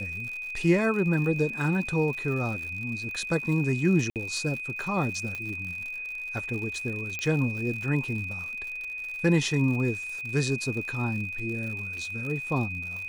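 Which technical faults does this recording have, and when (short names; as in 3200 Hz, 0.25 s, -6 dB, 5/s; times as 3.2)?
crackle 96/s -35 dBFS
tone 2500 Hz -33 dBFS
4.1–4.16 gap 58 ms
5.35 pop -20 dBFS
7.19 pop -17 dBFS
11.97 gap 2.7 ms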